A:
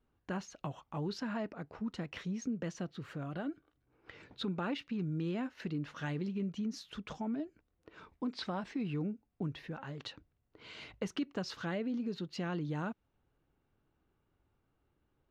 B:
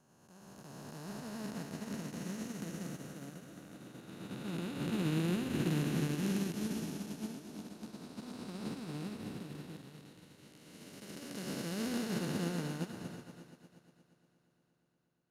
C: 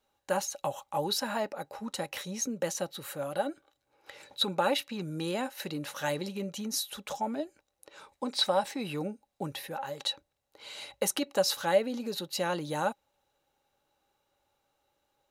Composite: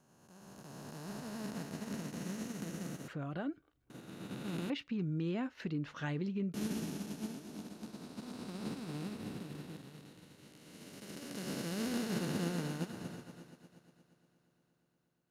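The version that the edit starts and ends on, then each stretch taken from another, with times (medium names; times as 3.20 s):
B
3.08–3.90 s: from A
4.70–6.54 s: from A
not used: C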